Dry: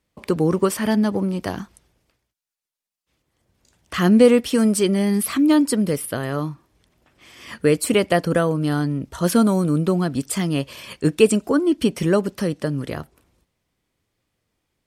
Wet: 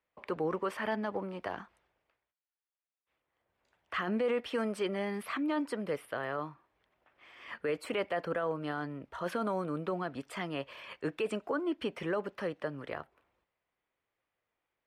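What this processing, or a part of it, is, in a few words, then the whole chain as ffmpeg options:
DJ mixer with the lows and highs turned down: -filter_complex "[0:a]acrossover=split=470 2900:gain=0.158 1 0.0708[s0][s1][s2];[s0][s1][s2]amix=inputs=3:normalize=0,alimiter=limit=0.112:level=0:latency=1:release=21,volume=0.562"

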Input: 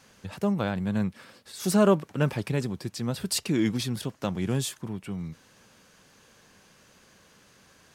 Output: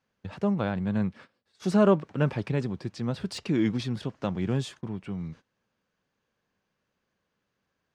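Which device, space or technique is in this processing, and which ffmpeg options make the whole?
behind a face mask: -af "lowpass=5800,highshelf=f=3400:g=-7.5,agate=range=0.1:threshold=0.00501:ratio=16:detection=peak,deesser=0.8"

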